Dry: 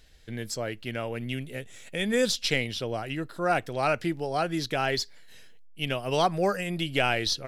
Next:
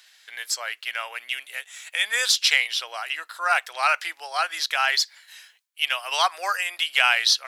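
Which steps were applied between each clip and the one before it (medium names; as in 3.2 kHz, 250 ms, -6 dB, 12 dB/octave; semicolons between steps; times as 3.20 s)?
high-pass 970 Hz 24 dB/octave; trim +9 dB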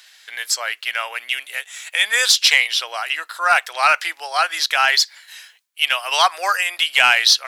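saturation -7 dBFS, distortion -22 dB; trim +6.5 dB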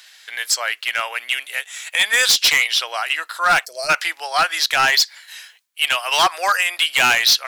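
time-frequency box 3.65–3.90 s, 690–4100 Hz -24 dB; overload inside the chain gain 12 dB; trim +2 dB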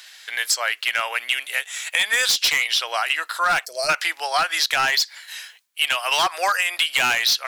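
compression, threshold -19 dBFS, peak gain reduction 7.5 dB; trim +2 dB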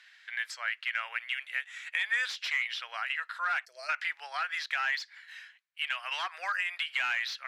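band-pass filter 1.8 kHz, Q 1.8; trim -7.5 dB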